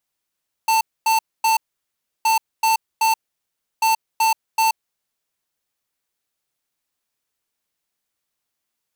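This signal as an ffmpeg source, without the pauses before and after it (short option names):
-f lavfi -i "aevalsrc='0.15*(2*lt(mod(892*t,1),0.5)-1)*clip(min(mod(mod(t,1.57),0.38),0.13-mod(mod(t,1.57),0.38))/0.005,0,1)*lt(mod(t,1.57),1.14)':d=4.71:s=44100"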